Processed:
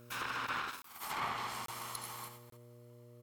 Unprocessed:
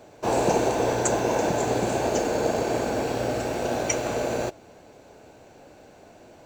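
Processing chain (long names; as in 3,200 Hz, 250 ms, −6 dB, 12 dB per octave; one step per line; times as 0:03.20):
lower of the sound and its delayed copy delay 1.7 ms
source passing by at 0:01.74, 36 m/s, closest 4.5 metres
mains hum 60 Hz, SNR 16 dB
spectral tilt +2.5 dB per octave
multi-tap delay 131/171/197/572 ms −18/−10/−12/−16 dB
compressor whose output falls as the input rises −40 dBFS, ratio −0.5
treble cut that deepens with the level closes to 1,400 Hz, closed at −35 dBFS
high-shelf EQ 5,700 Hz +10.5 dB
wrong playback speed 7.5 ips tape played at 15 ips
regular buffer underruns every 0.84 s, samples 1,024, zero, from 0:00.82
level +2 dB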